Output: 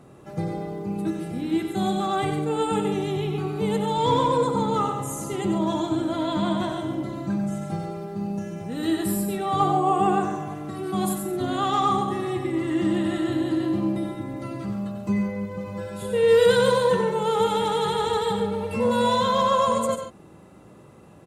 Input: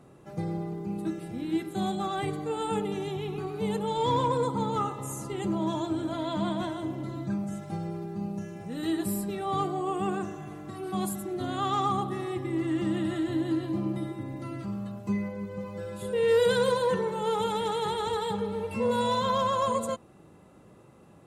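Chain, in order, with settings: 9.6–10.54 bell 880 Hz +9 dB 0.69 oct; loudspeakers at several distances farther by 32 m -7 dB, 48 m -11 dB; gain +4.5 dB

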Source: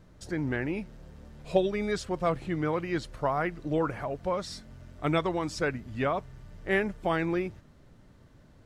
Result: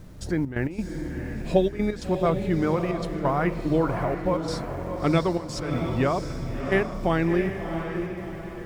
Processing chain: low shelf 330 Hz +8 dB; notches 50/100/150/200 Hz; in parallel at -1 dB: compressor, threshold -34 dBFS, peak gain reduction 17 dB; on the sum: requantised 10-bit, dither none; step gate "xxxx.x.xxxx" 134 bpm -12 dB; on a send: diffused feedback echo 0.671 s, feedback 43%, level -6.5 dB

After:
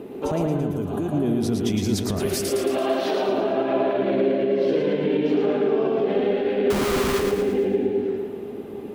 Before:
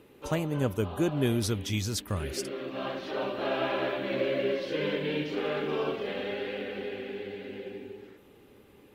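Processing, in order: small resonant body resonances 240/390/660 Hz, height 16 dB, ringing for 25 ms; compressor, threshold -23 dBFS, peak gain reduction 15 dB; 2.2–3.29 RIAA curve recording; limiter -22 dBFS, peak gain reduction 9 dB; 0.56–1.12 bell 540 Hz -6 dB 1.8 oct; 6.7–7.2 Schmitt trigger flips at -34.5 dBFS; split-band echo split 460 Hz, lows 0.149 s, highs 0.112 s, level -4 dB; gain +6 dB

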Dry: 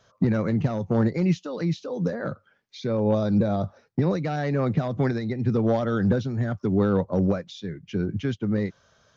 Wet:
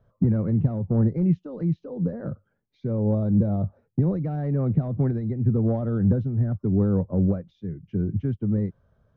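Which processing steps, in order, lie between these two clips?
LPF 1400 Hz 6 dB/oct; tilt -4 dB/oct; gain -8.5 dB

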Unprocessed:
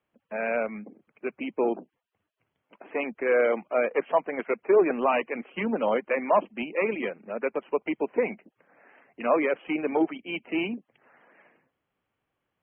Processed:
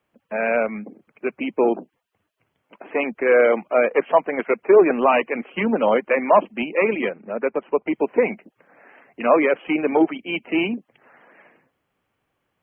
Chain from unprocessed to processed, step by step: 7.09–7.93 air absorption 370 m; gain +7 dB

